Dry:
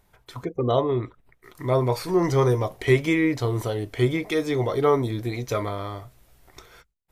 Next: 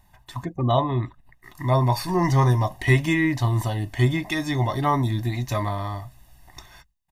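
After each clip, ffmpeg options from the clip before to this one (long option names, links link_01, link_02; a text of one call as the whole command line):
ffmpeg -i in.wav -af "aecho=1:1:1.1:0.99" out.wav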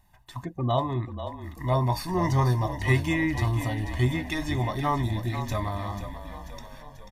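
ffmpeg -i in.wav -filter_complex "[0:a]asplit=8[link_01][link_02][link_03][link_04][link_05][link_06][link_07][link_08];[link_02]adelay=489,afreqshift=-34,volume=-10dB[link_09];[link_03]adelay=978,afreqshift=-68,volume=-14.6dB[link_10];[link_04]adelay=1467,afreqshift=-102,volume=-19.2dB[link_11];[link_05]adelay=1956,afreqshift=-136,volume=-23.7dB[link_12];[link_06]adelay=2445,afreqshift=-170,volume=-28.3dB[link_13];[link_07]adelay=2934,afreqshift=-204,volume=-32.9dB[link_14];[link_08]adelay=3423,afreqshift=-238,volume=-37.5dB[link_15];[link_01][link_09][link_10][link_11][link_12][link_13][link_14][link_15]amix=inputs=8:normalize=0,volume=-4.5dB" out.wav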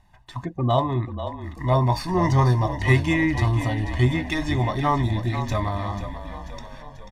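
ffmpeg -i in.wav -af "adynamicsmooth=sensitivity=5:basefreq=7400,volume=4.5dB" out.wav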